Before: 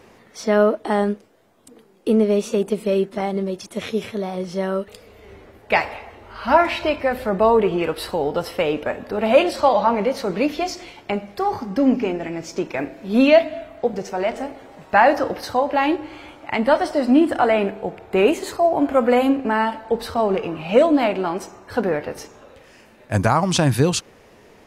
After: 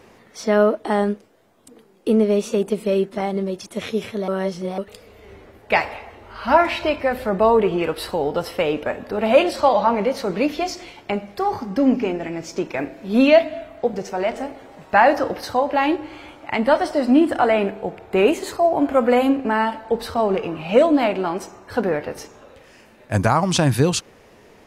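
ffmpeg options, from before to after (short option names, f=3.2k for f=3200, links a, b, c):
-filter_complex "[0:a]asplit=3[a][b][c];[a]atrim=end=4.282[d];[b]atrim=start=4.278:end=4.782,asetpts=PTS-STARTPTS,areverse[e];[c]atrim=start=4.778[f];[d][e]acrossfade=d=0.004:c1=hsin:c2=hsin[g];[g][f]acrossfade=d=0.004:c1=hsin:c2=hsin"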